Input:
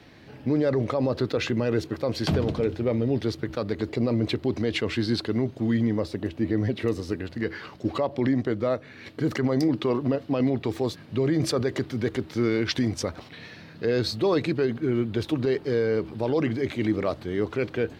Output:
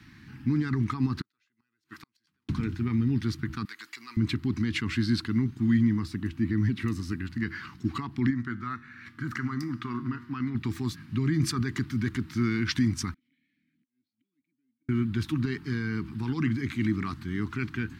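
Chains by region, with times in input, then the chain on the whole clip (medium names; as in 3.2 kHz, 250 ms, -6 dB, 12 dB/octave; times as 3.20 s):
1.21–2.49 s: high-pass 1.3 kHz 6 dB/octave + inverted gate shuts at -26 dBFS, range -41 dB
3.65–4.17 s: high-pass 1.2 kHz + treble shelf 6.7 kHz +7.5 dB
8.30–10.55 s: peaking EQ 1.4 kHz +10.5 dB 0.99 oct + feedback comb 120 Hz, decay 0.85 s
13.14–14.89 s: inverted gate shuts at -25 dBFS, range -41 dB + compression 16:1, threshold -58 dBFS + vowel filter i
whole clip: Chebyshev band-stop 240–1300 Hz, order 2; peaking EQ 3.4 kHz -6 dB 1.2 oct; trim +2 dB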